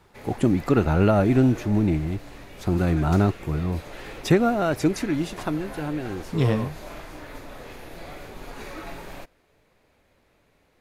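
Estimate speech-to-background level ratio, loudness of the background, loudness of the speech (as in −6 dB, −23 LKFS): 17.5 dB, −41.0 LKFS, −23.5 LKFS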